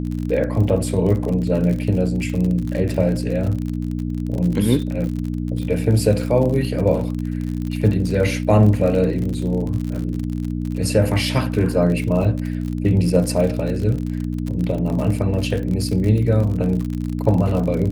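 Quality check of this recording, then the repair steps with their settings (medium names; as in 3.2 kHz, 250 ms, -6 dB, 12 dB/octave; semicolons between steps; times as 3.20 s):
crackle 52 per s -25 dBFS
hum 60 Hz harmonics 5 -24 dBFS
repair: de-click; de-hum 60 Hz, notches 5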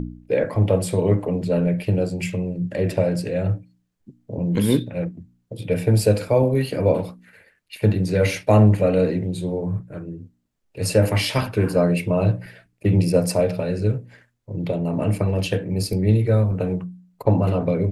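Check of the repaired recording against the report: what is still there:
nothing left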